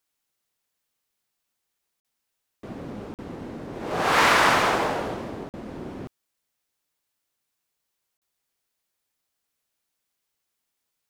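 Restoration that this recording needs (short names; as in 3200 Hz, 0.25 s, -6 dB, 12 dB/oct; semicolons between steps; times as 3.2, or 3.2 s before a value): interpolate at 2/3.14/5.49/8.17, 48 ms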